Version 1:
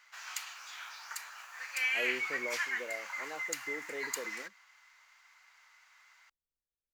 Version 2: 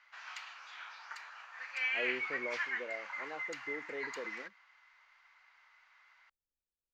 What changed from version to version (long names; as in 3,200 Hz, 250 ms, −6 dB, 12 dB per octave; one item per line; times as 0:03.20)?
master: add high-frequency loss of the air 210 metres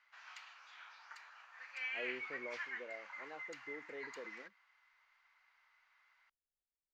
speech −6.0 dB
background −7.5 dB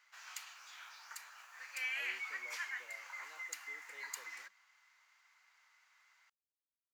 speech: add resonant band-pass 3,300 Hz, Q 0.86
master: remove high-frequency loss of the air 210 metres